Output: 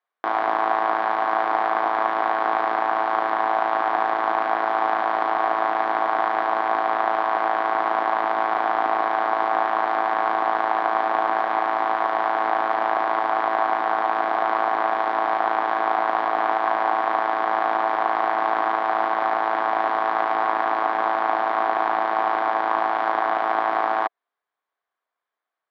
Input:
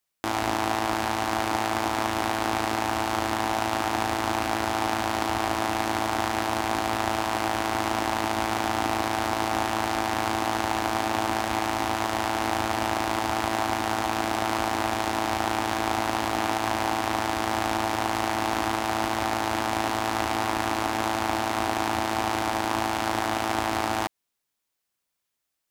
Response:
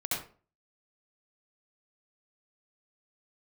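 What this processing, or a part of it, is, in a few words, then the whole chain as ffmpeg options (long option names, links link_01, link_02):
phone earpiece: -af "highpass=420,equalizer=frequency=440:width_type=q:width=4:gain=4,equalizer=frequency=710:width_type=q:width=4:gain=8,equalizer=frequency=1100:width_type=q:width=4:gain=9,equalizer=frequency=1600:width_type=q:width=4:gain=5,equalizer=frequency=2700:width_type=q:width=4:gain=-9,lowpass=frequency=3100:width=0.5412,lowpass=frequency=3100:width=1.3066"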